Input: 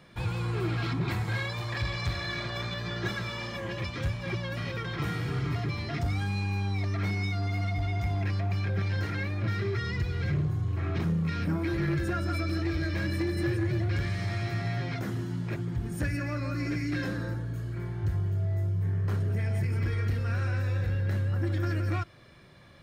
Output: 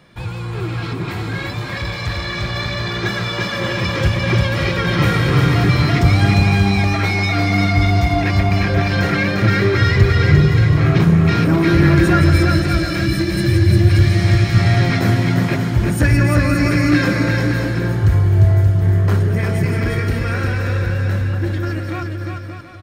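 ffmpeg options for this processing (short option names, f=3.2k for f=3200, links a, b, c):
-filter_complex "[0:a]asettb=1/sr,asplit=3[a][b][c];[a]atrim=end=12.214[d];[b]atrim=start=12.21:end=14.55,asetpts=PTS-STARTPTS,afade=t=in:d=0.004:c=qsin,afade=t=out:st=2.336:d=0.004:c=qsin,acrossover=split=240|3000[e][f][g];[f]acompressor=threshold=-41dB:ratio=6[h];[e][h][g]amix=inputs=3:normalize=0[i];[c]atrim=start=14.546[j];[d][i]acrossfade=d=0.004:c1=hsin:c2=qsin[k];[k][j]acrossfade=d=0.004:c1=qsin:c2=hsin,aecho=1:1:350|577.5|725.4|821.5|884:0.631|0.398|0.251|0.158|0.1,dynaudnorm=f=220:g=31:m=10.5dB,volume=5dB"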